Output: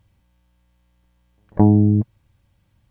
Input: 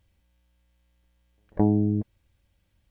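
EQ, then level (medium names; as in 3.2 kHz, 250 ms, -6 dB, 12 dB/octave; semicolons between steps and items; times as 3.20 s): graphic EQ 125/250/1000 Hz +10/+3/+7 dB; +2.5 dB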